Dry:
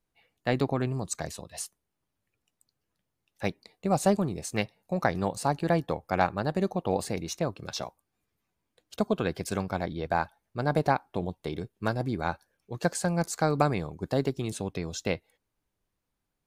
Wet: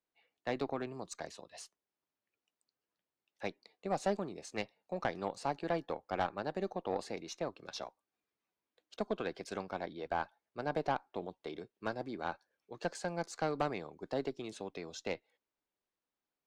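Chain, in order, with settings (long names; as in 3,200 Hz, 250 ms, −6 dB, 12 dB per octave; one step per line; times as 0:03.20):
three-way crossover with the lows and the highs turned down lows −17 dB, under 240 Hz, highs −22 dB, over 6,700 Hz
tube saturation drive 17 dB, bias 0.4
level −5.5 dB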